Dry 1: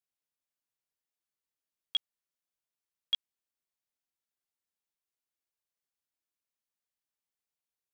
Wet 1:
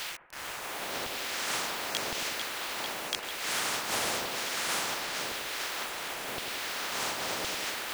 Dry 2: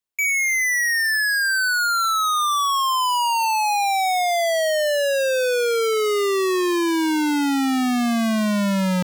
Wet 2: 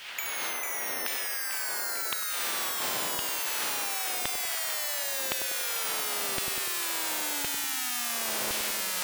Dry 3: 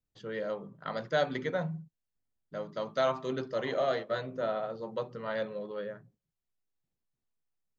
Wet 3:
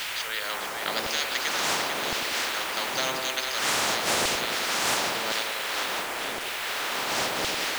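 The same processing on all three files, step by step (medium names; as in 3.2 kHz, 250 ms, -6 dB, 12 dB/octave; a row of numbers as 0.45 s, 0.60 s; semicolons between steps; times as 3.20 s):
wind noise 610 Hz -29 dBFS; treble shelf 2.2 kHz +7.5 dB; band-stop 1.1 kHz, Q 21; LFO high-pass saw down 0.94 Hz 450–3000 Hz; bit crusher 9-bit; on a send: two-band feedback delay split 1.5 kHz, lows 98 ms, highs 446 ms, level -11.5 dB; on the sum: spectrum-flattening compressor 4:1; peak normalisation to -12 dBFS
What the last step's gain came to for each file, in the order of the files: -4.0 dB, -10.0 dB, -6.0 dB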